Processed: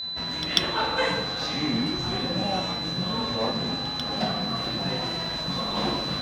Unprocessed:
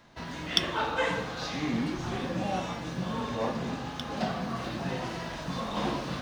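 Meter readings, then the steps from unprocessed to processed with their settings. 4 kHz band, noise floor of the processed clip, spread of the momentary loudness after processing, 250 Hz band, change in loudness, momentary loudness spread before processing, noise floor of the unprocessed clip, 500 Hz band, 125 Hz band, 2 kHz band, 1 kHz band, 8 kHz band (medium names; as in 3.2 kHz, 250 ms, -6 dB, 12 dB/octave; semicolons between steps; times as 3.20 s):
+10.5 dB, -31 dBFS, 4 LU, +3.0 dB, +6.0 dB, 7 LU, -39 dBFS, +3.0 dB, +3.0 dB, +3.0 dB, +3.0 dB, +3.0 dB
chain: pre-echo 142 ms -15 dB; whistle 4 kHz -33 dBFS; trim +3 dB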